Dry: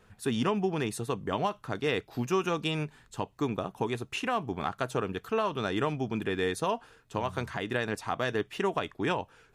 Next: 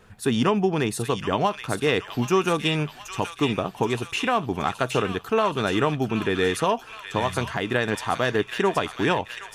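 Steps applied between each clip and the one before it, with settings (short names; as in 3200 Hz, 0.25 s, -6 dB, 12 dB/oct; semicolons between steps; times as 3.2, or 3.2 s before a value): thin delay 0.774 s, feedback 56%, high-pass 1800 Hz, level -5 dB; gain +7 dB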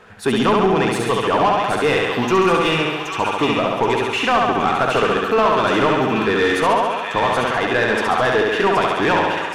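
flutter echo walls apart 11.8 m, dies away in 1.1 s; overdrive pedal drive 19 dB, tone 1700 Hz, clips at -6 dBFS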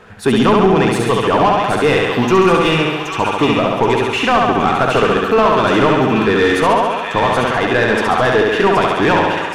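low shelf 310 Hz +5 dB; gain +2.5 dB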